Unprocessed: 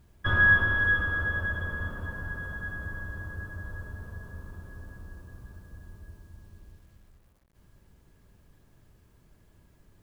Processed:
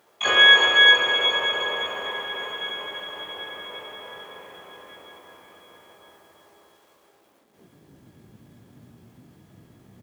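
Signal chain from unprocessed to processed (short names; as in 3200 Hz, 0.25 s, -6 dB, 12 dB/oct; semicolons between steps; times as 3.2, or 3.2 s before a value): dynamic EQ 430 Hz, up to +7 dB, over -55 dBFS, Q 3; high-pass sweep 490 Hz -> 120 Hz, 7–8.01; harmoniser +5 st -11 dB, +12 st -1 dB; on a send: echo 0.353 s -7 dB; on the sum: gain +3.5 dB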